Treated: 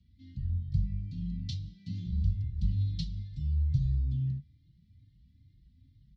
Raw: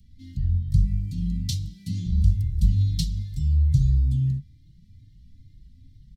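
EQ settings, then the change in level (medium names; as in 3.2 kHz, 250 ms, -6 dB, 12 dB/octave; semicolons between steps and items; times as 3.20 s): high-pass 48 Hz; low-pass 4.7 kHz 24 dB/octave; -8.0 dB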